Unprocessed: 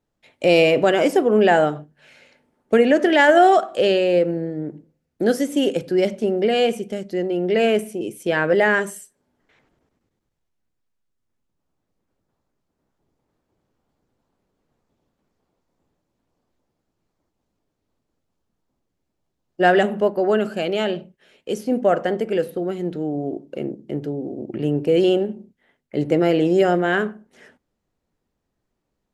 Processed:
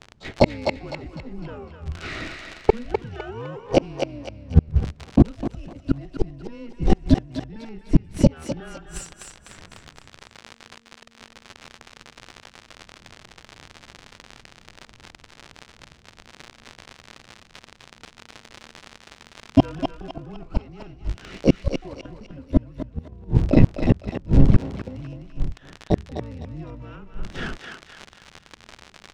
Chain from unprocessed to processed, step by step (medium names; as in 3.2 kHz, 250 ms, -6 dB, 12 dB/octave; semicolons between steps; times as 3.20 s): companding laws mixed up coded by mu; gate -47 dBFS, range -10 dB; peaking EQ 150 Hz +10.5 dB 2.8 oct; frequency shift -230 Hz; harmony voices +12 st -7 dB; crackle 54 per s -30 dBFS; inverted gate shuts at -10 dBFS, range -37 dB; distance through air 110 m; on a send: thinning echo 253 ms, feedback 42%, high-pass 690 Hz, level -5 dB; on the sum: loudness maximiser +12.5 dB; trim -1 dB